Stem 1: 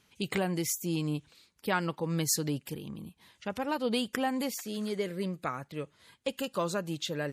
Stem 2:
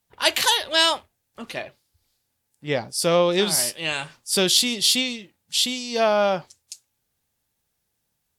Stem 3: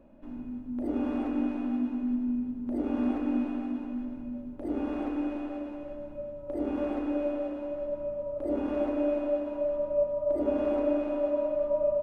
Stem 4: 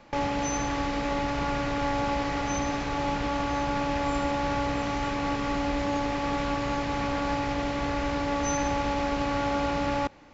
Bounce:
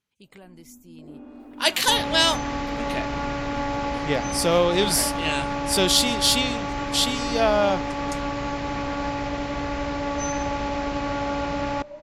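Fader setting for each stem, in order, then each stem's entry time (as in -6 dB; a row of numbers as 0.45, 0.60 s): -17.0, -1.0, -13.0, +0.5 dB; 0.00, 1.40, 0.20, 1.75 s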